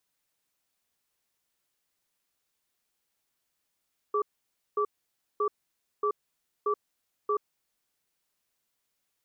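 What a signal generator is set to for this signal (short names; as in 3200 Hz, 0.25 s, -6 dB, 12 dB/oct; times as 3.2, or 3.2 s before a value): cadence 417 Hz, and 1160 Hz, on 0.08 s, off 0.55 s, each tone -26.5 dBFS 3.73 s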